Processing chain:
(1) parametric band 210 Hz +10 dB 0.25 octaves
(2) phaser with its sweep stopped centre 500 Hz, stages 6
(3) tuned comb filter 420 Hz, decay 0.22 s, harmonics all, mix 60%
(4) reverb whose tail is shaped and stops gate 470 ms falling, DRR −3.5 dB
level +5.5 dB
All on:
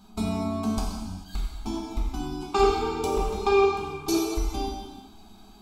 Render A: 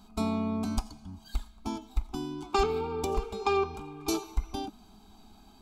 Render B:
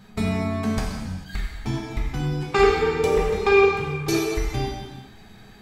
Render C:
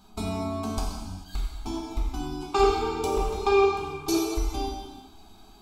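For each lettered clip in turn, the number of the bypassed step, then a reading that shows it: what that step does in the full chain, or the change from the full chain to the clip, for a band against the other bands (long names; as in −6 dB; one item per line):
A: 4, change in momentary loudness spread −2 LU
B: 2, 2 kHz band +8.0 dB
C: 1, 250 Hz band −2.0 dB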